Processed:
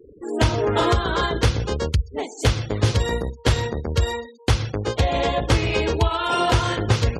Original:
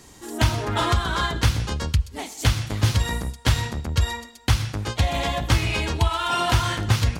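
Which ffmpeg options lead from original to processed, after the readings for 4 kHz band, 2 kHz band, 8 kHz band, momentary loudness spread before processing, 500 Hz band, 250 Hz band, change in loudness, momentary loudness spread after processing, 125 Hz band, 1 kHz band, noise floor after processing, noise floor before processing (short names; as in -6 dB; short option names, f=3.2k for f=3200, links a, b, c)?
0.0 dB, +0.5 dB, -2.0 dB, 5 LU, +8.5 dB, +3.5 dB, +1.5 dB, 5 LU, +0.5 dB, +2.0 dB, -46 dBFS, -47 dBFS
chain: -af "equalizer=f=450:w=1.7:g=12.5,afftfilt=real='re*gte(hypot(re,im),0.0178)':imag='im*gte(hypot(re,im),0.0178)':win_size=1024:overlap=0.75"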